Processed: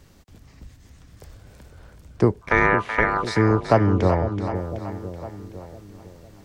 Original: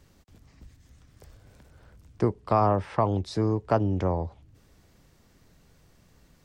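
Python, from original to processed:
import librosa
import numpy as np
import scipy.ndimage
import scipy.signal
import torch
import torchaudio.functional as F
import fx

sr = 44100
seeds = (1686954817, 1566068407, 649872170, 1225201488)

p1 = fx.ring_mod(x, sr, carrier_hz=1100.0, at=(2.41, 3.24))
p2 = p1 + fx.echo_split(p1, sr, split_hz=600.0, low_ms=504, high_ms=378, feedback_pct=52, wet_db=-8.5, dry=0)
y = p2 * librosa.db_to_amplitude(6.5)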